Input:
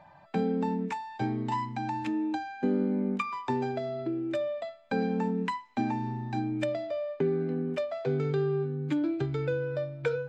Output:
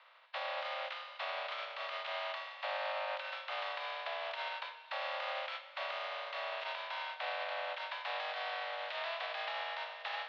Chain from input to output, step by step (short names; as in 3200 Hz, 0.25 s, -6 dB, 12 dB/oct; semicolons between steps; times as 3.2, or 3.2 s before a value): spectral contrast lowered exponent 0.27; limiter -22.5 dBFS, peak gain reduction 10.5 dB; mistuned SSB +340 Hz 200–3500 Hz; Schroeder reverb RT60 2.3 s, combs from 28 ms, DRR 11 dB; gain -5 dB